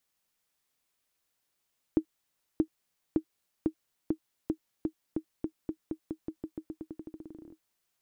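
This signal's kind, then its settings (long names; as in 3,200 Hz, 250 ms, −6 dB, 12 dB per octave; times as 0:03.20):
bouncing ball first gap 0.63 s, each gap 0.89, 316 Hz, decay 81 ms −13.5 dBFS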